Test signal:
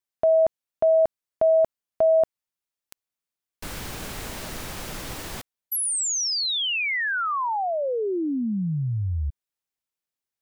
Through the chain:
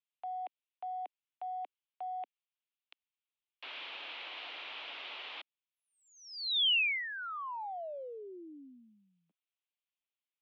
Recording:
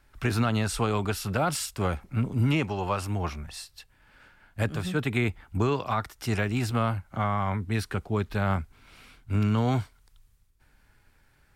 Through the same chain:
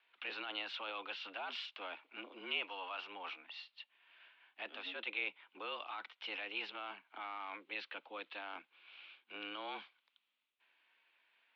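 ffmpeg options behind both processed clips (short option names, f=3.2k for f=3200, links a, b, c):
-filter_complex "[0:a]acrossover=split=540 2600:gain=0.158 1 0.224[a][b][c];[a][b][c]amix=inputs=3:normalize=0,areverse,acompressor=threshold=-30dB:ratio=6:attack=0.23:release=53:knee=6:detection=rms,areverse,aexciter=amount=8.3:drive=3.5:freq=2.4k,highpass=f=180:t=q:w=0.5412,highpass=f=180:t=q:w=1.307,lowpass=f=3.4k:t=q:w=0.5176,lowpass=f=3.4k:t=q:w=0.7071,lowpass=f=3.4k:t=q:w=1.932,afreqshift=94,volume=-8dB"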